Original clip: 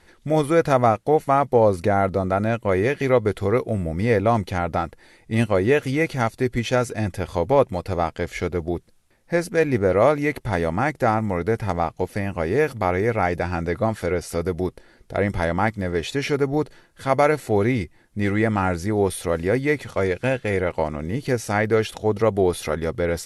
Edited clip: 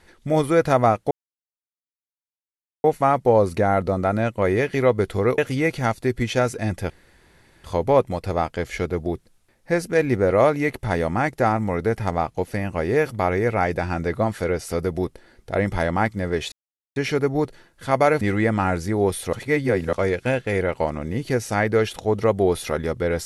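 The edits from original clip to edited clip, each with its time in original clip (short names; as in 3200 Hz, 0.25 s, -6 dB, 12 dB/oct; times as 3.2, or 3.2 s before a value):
1.11 insert silence 1.73 s
3.65–5.74 cut
7.26 insert room tone 0.74 s
16.14 insert silence 0.44 s
17.39–18.19 cut
19.31–19.91 reverse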